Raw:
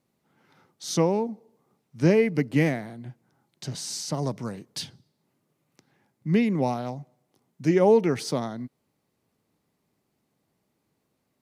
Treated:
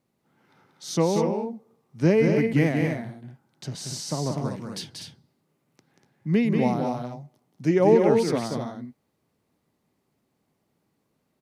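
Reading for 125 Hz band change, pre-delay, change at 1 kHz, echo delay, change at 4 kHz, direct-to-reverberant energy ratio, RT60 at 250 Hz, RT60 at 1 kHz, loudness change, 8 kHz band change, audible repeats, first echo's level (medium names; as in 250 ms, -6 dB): +2.0 dB, no reverb, +1.5 dB, 185 ms, -0.5 dB, no reverb, no reverb, no reverb, +1.5 dB, -0.5 dB, 2, -5.0 dB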